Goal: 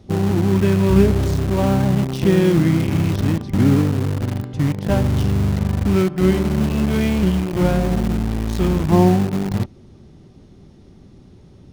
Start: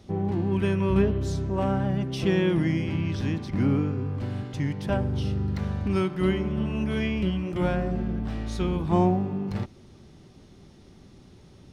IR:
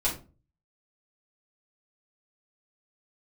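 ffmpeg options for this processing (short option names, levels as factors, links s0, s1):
-filter_complex "[0:a]tiltshelf=f=720:g=4,asplit=2[s0][s1];[s1]acrusher=bits=3:mix=0:aa=0.000001,volume=0.398[s2];[s0][s2]amix=inputs=2:normalize=0,volume=1.33"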